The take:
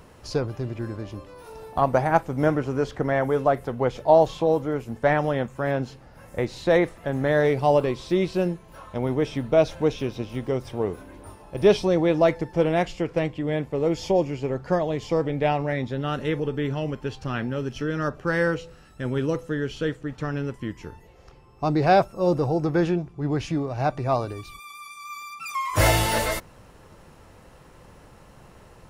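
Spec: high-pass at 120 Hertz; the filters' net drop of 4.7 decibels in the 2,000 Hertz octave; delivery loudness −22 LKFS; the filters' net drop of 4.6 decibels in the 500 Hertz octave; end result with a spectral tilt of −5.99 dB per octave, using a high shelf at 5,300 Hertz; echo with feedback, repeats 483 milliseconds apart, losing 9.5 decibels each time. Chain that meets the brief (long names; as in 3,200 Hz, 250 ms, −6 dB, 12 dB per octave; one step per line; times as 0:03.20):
high-pass filter 120 Hz
parametric band 500 Hz −5.5 dB
parametric band 2,000 Hz −4.5 dB
high-shelf EQ 5,300 Hz −8.5 dB
repeating echo 483 ms, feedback 33%, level −9.5 dB
level +5.5 dB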